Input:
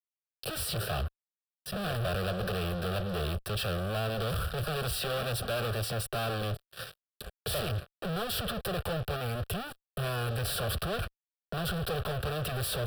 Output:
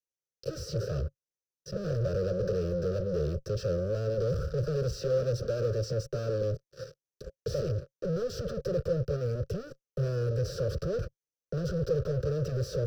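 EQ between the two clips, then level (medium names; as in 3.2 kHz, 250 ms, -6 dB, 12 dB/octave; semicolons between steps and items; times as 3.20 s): FFT filter 100 Hz 0 dB, 140 Hz +6 dB, 220 Hz -4 dB, 540 Hz +9 dB, 800 Hz -30 dB, 1.3 kHz -8 dB, 3.4 kHz -21 dB, 6.2 kHz +7 dB, 9 kHz -25 dB, 15 kHz -22 dB; 0.0 dB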